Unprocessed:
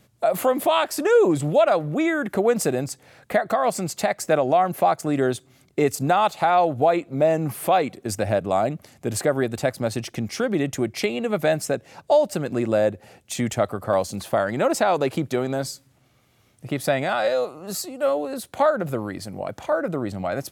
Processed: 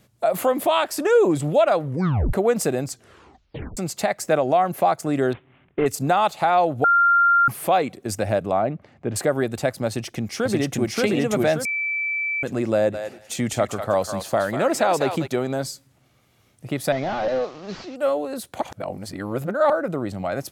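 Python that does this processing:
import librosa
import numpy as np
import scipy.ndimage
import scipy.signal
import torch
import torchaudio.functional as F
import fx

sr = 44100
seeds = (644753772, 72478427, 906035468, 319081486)

y = fx.cvsd(x, sr, bps=16000, at=(5.33, 5.86))
y = fx.lowpass(y, sr, hz=2300.0, slope=12, at=(8.51, 9.16))
y = fx.echo_throw(y, sr, start_s=9.87, length_s=1.08, ms=580, feedback_pct=40, wet_db=0.0)
y = fx.echo_thinned(y, sr, ms=196, feedback_pct=16, hz=1000.0, wet_db=-4.5, at=(12.93, 15.26), fade=0.02)
y = fx.delta_mod(y, sr, bps=32000, step_db=-39.0, at=(16.92, 17.96))
y = fx.edit(y, sr, fx.tape_stop(start_s=1.84, length_s=0.49),
    fx.tape_stop(start_s=2.89, length_s=0.88),
    fx.bleep(start_s=6.84, length_s=0.64, hz=1390.0, db=-13.0),
    fx.bleep(start_s=11.65, length_s=0.78, hz=2320.0, db=-22.0),
    fx.reverse_span(start_s=18.61, length_s=1.09), tone=tone)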